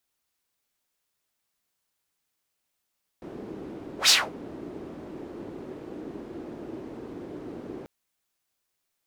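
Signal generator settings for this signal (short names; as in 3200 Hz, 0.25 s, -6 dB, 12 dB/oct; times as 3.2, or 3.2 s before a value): whoosh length 4.64 s, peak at 0.87, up 0.11 s, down 0.24 s, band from 330 Hz, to 5000 Hz, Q 2.5, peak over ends 23.5 dB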